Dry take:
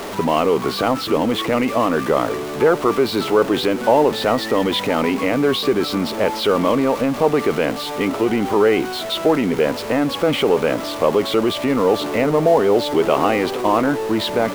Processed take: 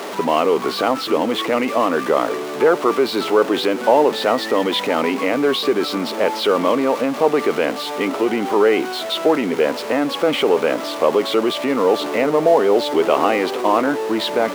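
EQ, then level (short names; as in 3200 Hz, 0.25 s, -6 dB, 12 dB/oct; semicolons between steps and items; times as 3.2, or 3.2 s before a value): HPF 260 Hz 12 dB/oct; high shelf 8900 Hz -4 dB; +1.0 dB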